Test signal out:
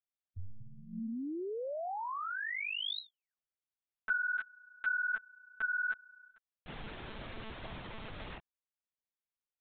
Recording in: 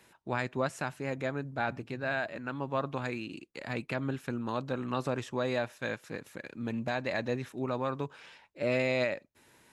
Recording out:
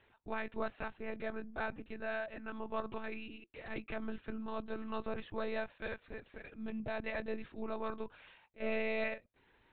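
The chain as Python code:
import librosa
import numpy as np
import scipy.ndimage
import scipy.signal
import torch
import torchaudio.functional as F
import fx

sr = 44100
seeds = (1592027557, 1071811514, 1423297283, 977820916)

y = fx.lpc_monotone(x, sr, seeds[0], pitch_hz=220.0, order=16)
y = y * 10.0 ** (-6.0 / 20.0)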